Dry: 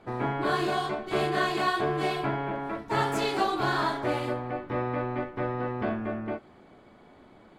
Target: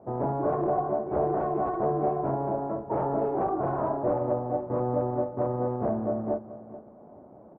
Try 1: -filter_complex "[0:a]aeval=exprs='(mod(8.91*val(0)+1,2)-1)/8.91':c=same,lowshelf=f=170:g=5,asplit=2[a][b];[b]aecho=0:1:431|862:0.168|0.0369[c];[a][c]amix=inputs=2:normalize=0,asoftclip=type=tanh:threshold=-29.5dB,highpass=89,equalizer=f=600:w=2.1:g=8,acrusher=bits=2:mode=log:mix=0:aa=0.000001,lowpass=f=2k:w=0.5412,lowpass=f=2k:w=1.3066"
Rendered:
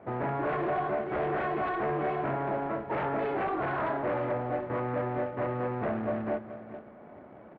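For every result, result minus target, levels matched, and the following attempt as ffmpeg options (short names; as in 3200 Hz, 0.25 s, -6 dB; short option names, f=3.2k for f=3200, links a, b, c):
2000 Hz band +15.5 dB; soft clip: distortion +10 dB
-filter_complex "[0:a]aeval=exprs='(mod(8.91*val(0)+1,2)-1)/8.91':c=same,lowshelf=f=170:g=5,asplit=2[a][b];[b]aecho=0:1:431|862:0.168|0.0369[c];[a][c]amix=inputs=2:normalize=0,asoftclip=type=tanh:threshold=-29.5dB,highpass=89,equalizer=f=600:w=2.1:g=8,acrusher=bits=2:mode=log:mix=0:aa=0.000001,lowpass=f=970:w=0.5412,lowpass=f=970:w=1.3066"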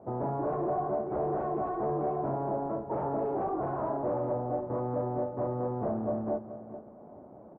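soft clip: distortion +10 dB
-filter_complex "[0:a]aeval=exprs='(mod(8.91*val(0)+1,2)-1)/8.91':c=same,lowshelf=f=170:g=5,asplit=2[a][b];[b]aecho=0:1:431|862:0.168|0.0369[c];[a][c]amix=inputs=2:normalize=0,asoftclip=type=tanh:threshold=-20.5dB,highpass=89,equalizer=f=600:w=2.1:g=8,acrusher=bits=2:mode=log:mix=0:aa=0.000001,lowpass=f=970:w=0.5412,lowpass=f=970:w=1.3066"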